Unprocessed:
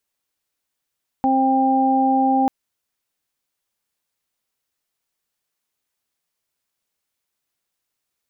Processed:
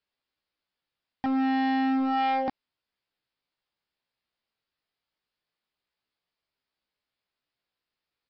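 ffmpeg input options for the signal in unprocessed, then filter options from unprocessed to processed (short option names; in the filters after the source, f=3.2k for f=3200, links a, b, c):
-f lavfi -i "aevalsrc='0.126*sin(2*PI*265*t)+0.0422*sin(2*PI*530*t)+0.15*sin(2*PI*795*t)':d=1.24:s=44100"
-af "flanger=delay=15:depth=3.6:speed=0.3,aresample=11025,volume=23.5dB,asoftclip=hard,volume=-23.5dB,aresample=44100"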